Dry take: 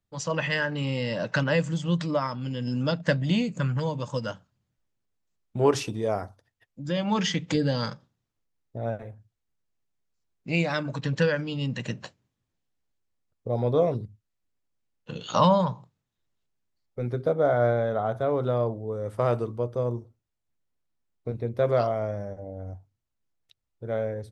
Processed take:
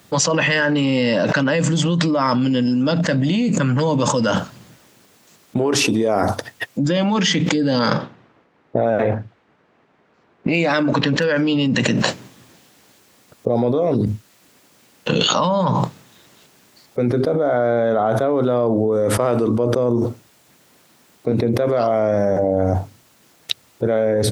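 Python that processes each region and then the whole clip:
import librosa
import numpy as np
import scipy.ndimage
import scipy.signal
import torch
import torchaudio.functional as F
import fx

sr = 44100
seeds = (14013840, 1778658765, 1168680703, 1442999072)

y = fx.chain(x, sr, fx.env_lowpass(base_hz=1700.0, full_db=-22.0),
    fx.bass_treble(bass_db=-4, treble_db=-3),
    fx.clip_hard(threshold_db=-12.5), at=(7.79, 11.66))
y = scipy.signal.sosfilt(scipy.signal.butter(2, 180.0, 'highpass', fs=sr, output='sos'), y)
y = fx.dynamic_eq(y, sr, hz=270.0, q=2.1, threshold_db=-42.0, ratio=4.0, max_db=6)
y = fx.env_flatten(y, sr, amount_pct=100)
y = y * librosa.db_to_amplitude(-2.5)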